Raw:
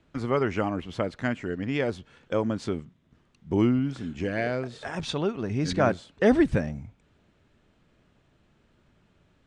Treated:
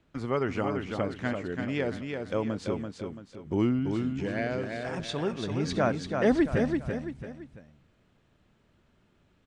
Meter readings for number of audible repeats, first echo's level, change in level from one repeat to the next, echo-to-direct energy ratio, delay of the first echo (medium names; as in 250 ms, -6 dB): 3, -5.0 dB, -8.0 dB, -4.5 dB, 336 ms